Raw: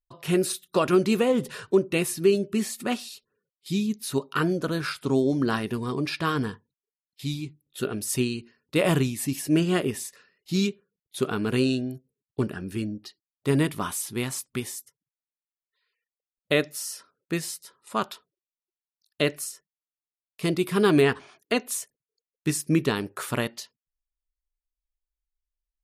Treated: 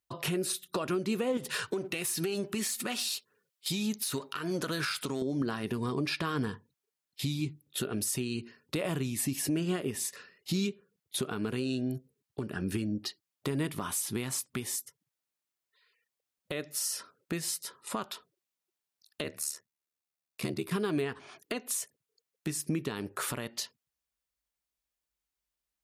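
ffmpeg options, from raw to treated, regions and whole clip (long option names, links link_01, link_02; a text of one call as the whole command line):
ffmpeg -i in.wav -filter_complex "[0:a]asettb=1/sr,asplit=3[link_01][link_02][link_03];[link_01]atrim=end=1.374[link_04];[link_02]atrim=start=1.37:end=5.22,asetpts=PTS-STARTPTS,afade=type=in:duration=0.004:curve=qsin,afade=type=out:start_time=3.846:duration=0.004:curve=qsin,aeval=exprs='if(lt(val(0),0),0.708*val(0),val(0))':channel_layout=same,tiltshelf=frequency=940:gain=-5,acompressor=threshold=-30dB:ratio=6:attack=3.2:release=140:knee=1:detection=peak[link_05];[link_03]atrim=start=5.216[link_06];[link_04][link_05]acrossfade=duration=0.004:curve1=hsin:curve2=qsin[link_07];[link_07][link_06]acrossfade=duration=0.004:curve1=qsin:curve2=hsin,asettb=1/sr,asplit=3[link_08][link_09][link_10];[link_08]atrim=end=19.234[link_11];[link_09]atrim=start=19.23:end=20.71,asetpts=PTS-STARTPTS,afade=type=in:duration=0.004:curve=qsin,afade=type=out:start_time=1.476:duration=0.004:curve=qsin,bandreject=frequency=3100:width=11,aeval=exprs='val(0)*sin(2*PI*37*n/s)':channel_layout=same[link_12];[link_10]atrim=start=20.706[link_13];[link_11][link_12]acrossfade=duration=0.004:curve1=hsin:curve2=qsin[link_14];[link_14][link_13]acrossfade=duration=0.004:curve1=qsin:curve2=hsin,highpass=frequency=68:width=0.5412,highpass=frequency=68:width=1.3066,acompressor=threshold=-33dB:ratio=5,alimiter=level_in=4dB:limit=-24dB:level=0:latency=1:release=200,volume=-4dB,volume=6.5dB" out.wav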